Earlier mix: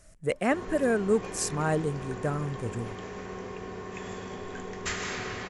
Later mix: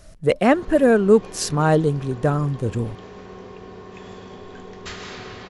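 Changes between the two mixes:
speech +10.5 dB; master: add graphic EQ 2000/4000/8000 Hz -5/+5/-10 dB

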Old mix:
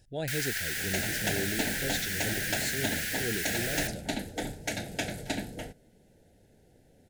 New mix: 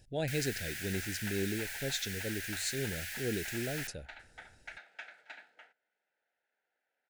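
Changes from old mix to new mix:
first sound -8.5 dB; second sound: add ladder band-pass 1400 Hz, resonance 60%; master: add bell 2500 Hz +3.5 dB 0.33 oct

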